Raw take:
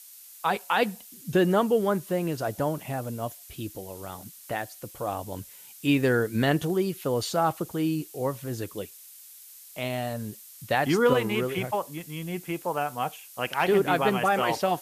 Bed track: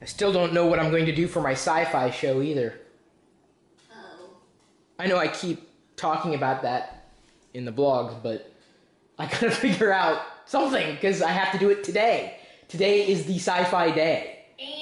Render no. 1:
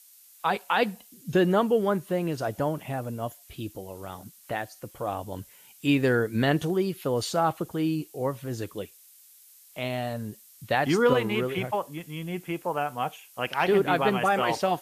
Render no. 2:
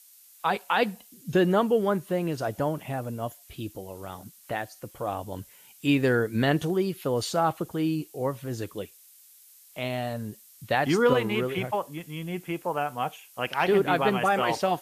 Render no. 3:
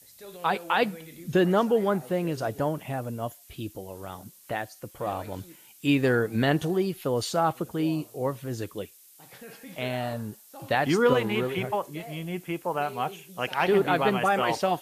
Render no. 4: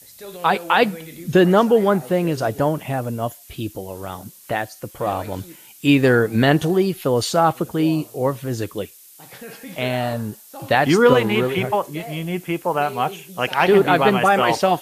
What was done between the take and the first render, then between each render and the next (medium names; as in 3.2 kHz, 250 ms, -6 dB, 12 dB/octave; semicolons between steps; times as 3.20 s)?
noise print and reduce 6 dB
no audible change
add bed track -22.5 dB
trim +8 dB